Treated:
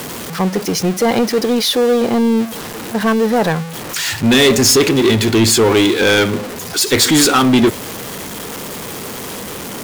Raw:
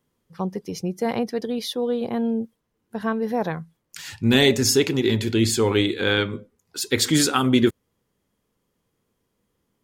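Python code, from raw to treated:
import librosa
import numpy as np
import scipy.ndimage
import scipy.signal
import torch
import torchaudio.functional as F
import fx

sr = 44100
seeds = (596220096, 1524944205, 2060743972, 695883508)

y = x + 0.5 * 10.0 ** (-29.5 / 20.0) * np.sign(x)
y = fx.low_shelf(y, sr, hz=140.0, db=-7.5)
y = fx.leveller(y, sr, passes=3)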